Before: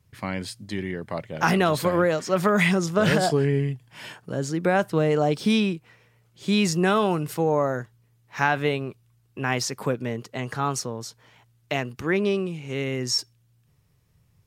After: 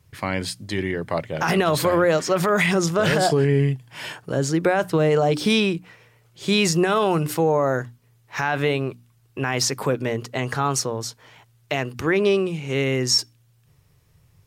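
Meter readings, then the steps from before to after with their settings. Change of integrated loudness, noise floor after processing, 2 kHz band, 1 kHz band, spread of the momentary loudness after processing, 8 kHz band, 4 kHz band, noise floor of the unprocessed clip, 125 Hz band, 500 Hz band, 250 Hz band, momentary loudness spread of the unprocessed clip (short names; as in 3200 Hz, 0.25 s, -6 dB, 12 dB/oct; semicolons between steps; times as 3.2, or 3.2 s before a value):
+2.5 dB, -60 dBFS, +2.0 dB, +2.0 dB, 10 LU, +6.0 dB, +5.0 dB, -64 dBFS, +2.5 dB, +3.5 dB, +1.0 dB, 12 LU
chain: bell 210 Hz -6.5 dB 0.37 oct; notches 60/120/180/240/300 Hz; maximiser +15.5 dB; gain -9 dB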